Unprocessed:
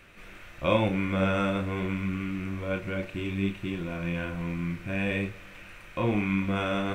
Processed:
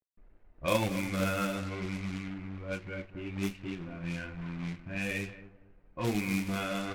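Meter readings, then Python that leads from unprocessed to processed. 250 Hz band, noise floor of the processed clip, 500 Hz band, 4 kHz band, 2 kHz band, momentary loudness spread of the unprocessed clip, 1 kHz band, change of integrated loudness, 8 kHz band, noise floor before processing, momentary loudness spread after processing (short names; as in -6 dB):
-5.5 dB, -62 dBFS, -6.0 dB, -2.5 dB, -4.0 dB, 12 LU, -5.0 dB, -5.0 dB, n/a, -48 dBFS, 10 LU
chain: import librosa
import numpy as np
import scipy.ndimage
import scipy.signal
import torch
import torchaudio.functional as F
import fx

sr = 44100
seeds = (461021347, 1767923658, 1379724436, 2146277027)

y = fx.bin_expand(x, sr, power=1.5)
y = scipy.signal.sosfilt(scipy.signal.butter(2, 3600.0, 'lowpass', fs=sr, output='sos'), y)
y = fx.high_shelf(y, sr, hz=2400.0, db=6.5)
y = fx.echo_feedback(y, sr, ms=232, feedback_pct=31, wet_db=-14.0)
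y = fx.quant_companded(y, sr, bits=4)
y = fx.env_lowpass(y, sr, base_hz=470.0, full_db=-25.0)
y = F.gain(torch.from_numpy(y), -3.5).numpy()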